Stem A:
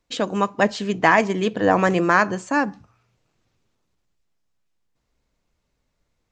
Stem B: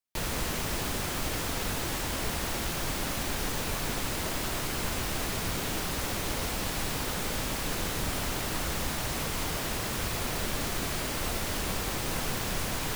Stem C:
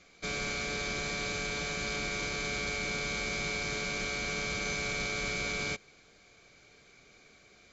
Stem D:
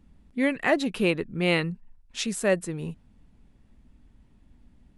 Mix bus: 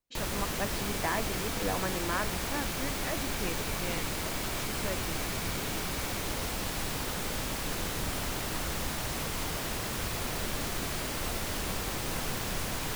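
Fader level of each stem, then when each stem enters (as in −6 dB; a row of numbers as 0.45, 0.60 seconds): −16.5, −2.0, −13.5, −15.5 decibels; 0.00, 0.00, 0.50, 2.40 seconds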